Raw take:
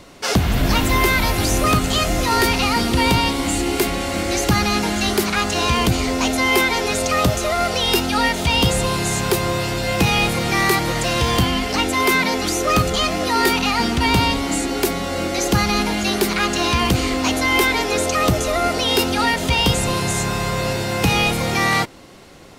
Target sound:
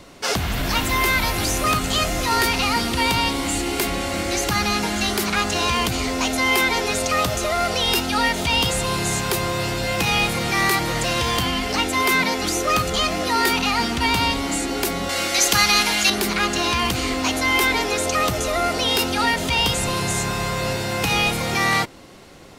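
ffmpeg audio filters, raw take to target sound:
-filter_complex "[0:a]asettb=1/sr,asplit=3[a][b][c];[a]atrim=end=15.094[d];[b]atrim=start=15.09:end=16.1,asetpts=PTS-STARTPTS,afade=t=in:d=0.004:c=qsin,afade=t=out:st=1.006:d=0.004:c=qsin,tiltshelf=f=810:g=-8.5[e];[c]atrim=start=16.096[f];[d][e]acrossfade=d=0.004:c1=hsin:c2=qsin[g];[g][f]acrossfade=d=0.004:c1=qsin:c2=hsin,acrossover=split=770[h][i];[h]alimiter=limit=-18dB:level=0:latency=1[j];[j][i]amix=inputs=2:normalize=0,volume=-1dB"

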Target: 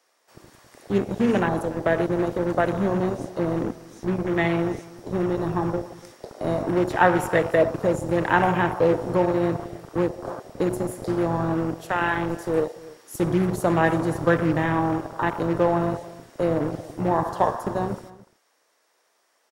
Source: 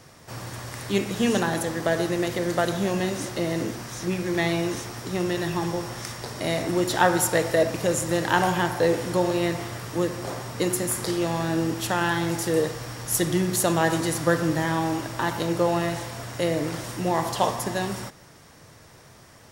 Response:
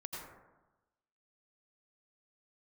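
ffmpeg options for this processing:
-filter_complex "[0:a]afwtdn=0.0355,asettb=1/sr,asplit=3[a][b][c];[a]atrim=end=11.534[d];[b]atrim=start=11.53:end=13.14,asetpts=PTS-STARTPTS,afade=t=in:d=0.004:c=qsin,afade=t=out:st=1.606:d=0.004:c=qsin,lowshelf=f=380:g=-4.5[e];[c]atrim=start=13.136[f];[d][e]acrossfade=d=0.004:c1=hsin:c2=qsin[g];[g][f]acrossfade=d=0.004:c1=qsin:c2=hsin,acrossover=split=360|1900[h][i][j];[h]acrusher=bits=4:mix=0:aa=0.5[k];[k][i][j]amix=inputs=3:normalize=0,aecho=1:1:291:0.1,volume=2dB"

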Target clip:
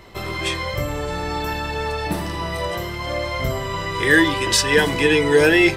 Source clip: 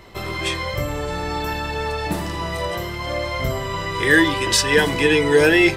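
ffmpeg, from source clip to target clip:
-filter_complex "[0:a]asettb=1/sr,asplit=3[a][b][c];[a]atrim=end=2.044[d];[b]atrim=start=2.04:end=2.63,asetpts=PTS-STARTPTS,afade=t=in:d=0.004:c=qsin,afade=t=out:st=0.586:d=0.004:c=qsin,bandreject=f=7k:w=8.1[e];[c]atrim=start=2.626[f];[d][e]acrossfade=d=0.004:c1=hsin:c2=qsin[g];[g][f]acrossfade=d=0.004:c1=qsin:c2=hsin"

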